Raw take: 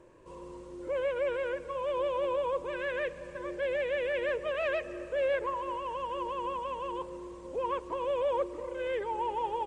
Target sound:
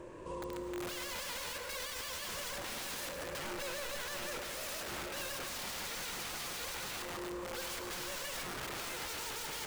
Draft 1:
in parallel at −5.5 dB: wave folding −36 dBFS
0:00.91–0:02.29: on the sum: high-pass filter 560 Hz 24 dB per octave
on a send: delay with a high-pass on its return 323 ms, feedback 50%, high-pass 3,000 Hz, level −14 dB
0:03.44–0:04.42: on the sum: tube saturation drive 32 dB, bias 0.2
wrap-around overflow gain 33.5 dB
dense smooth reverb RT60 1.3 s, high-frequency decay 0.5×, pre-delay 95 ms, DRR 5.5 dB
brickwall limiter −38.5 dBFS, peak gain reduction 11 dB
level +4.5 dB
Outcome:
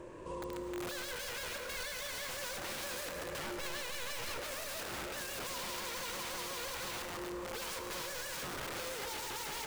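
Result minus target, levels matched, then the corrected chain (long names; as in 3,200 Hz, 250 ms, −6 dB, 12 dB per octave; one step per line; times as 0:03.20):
wave folding: distortion +23 dB
in parallel at −5.5 dB: wave folding −29 dBFS
0:00.91–0:02.29: on the sum: high-pass filter 560 Hz 24 dB per octave
on a send: delay with a high-pass on its return 323 ms, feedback 50%, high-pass 3,000 Hz, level −14 dB
0:03.44–0:04.42: on the sum: tube saturation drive 32 dB, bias 0.2
wrap-around overflow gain 33.5 dB
dense smooth reverb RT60 1.3 s, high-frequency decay 0.5×, pre-delay 95 ms, DRR 5.5 dB
brickwall limiter −38.5 dBFS, peak gain reduction 12 dB
level +4.5 dB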